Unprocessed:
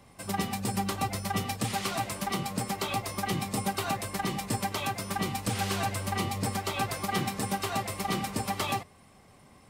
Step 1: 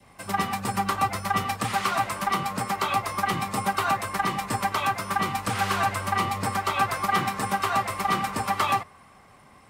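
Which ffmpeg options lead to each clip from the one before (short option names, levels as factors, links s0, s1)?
-filter_complex "[0:a]adynamicequalizer=threshold=0.00501:dfrequency=1200:dqfactor=1.6:tfrequency=1200:tqfactor=1.6:attack=5:release=100:ratio=0.375:range=3:mode=boostabove:tftype=bell,acrossover=split=110|790|2400[s0][s1][s2][s3];[s2]acontrast=89[s4];[s0][s1][s4][s3]amix=inputs=4:normalize=0"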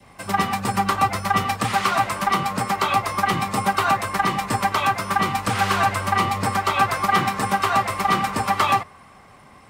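-af "equalizer=f=12000:w=0.74:g=-3.5,volume=1.78"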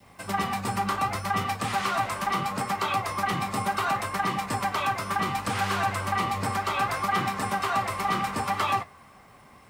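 -filter_complex "[0:a]flanger=delay=9.5:depth=9.2:regen=-62:speed=0.69:shape=triangular,asplit=2[s0][s1];[s1]alimiter=limit=0.0944:level=0:latency=1:release=20,volume=0.944[s2];[s0][s2]amix=inputs=2:normalize=0,acrusher=bits=9:mix=0:aa=0.000001,volume=0.501"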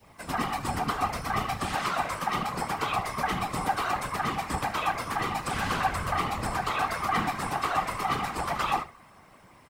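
-af "flanger=delay=6.9:depth=7.2:regen=-52:speed=1.7:shape=triangular,aecho=1:1:73:0.168,afftfilt=real='hypot(re,im)*cos(2*PI*random(0))':imag='hypot(re,im)*sin(2*PI*random(1))':win_size=512:overlap=0.75,volume=2.51"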